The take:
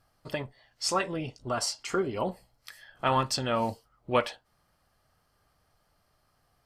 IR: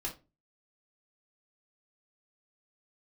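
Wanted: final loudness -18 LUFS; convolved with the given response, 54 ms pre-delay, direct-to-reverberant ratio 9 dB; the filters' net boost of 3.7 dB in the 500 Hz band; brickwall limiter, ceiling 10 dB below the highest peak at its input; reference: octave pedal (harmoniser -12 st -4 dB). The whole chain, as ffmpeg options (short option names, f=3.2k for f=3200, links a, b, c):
-filter_complex "[0:a]equalizer=f=500:t=o:g=4.5,alimiter=limit=-18.5dB:level=0:latency=1,asplit=2[a][b];[1:a]atrim=start_sample=2205,adelay=54[c];[b][c]afir=irnorm=-1:irlink=0,volume=-10.5dB[d];[a][d]amix=inputs=2:normalize=0,asplit=2[e][f];[f]asetrate=22050,aresample=44100,atempo=2,volume=-4dB[g];[e][g]amix=inputs=2:normalize=0,volume=12dB"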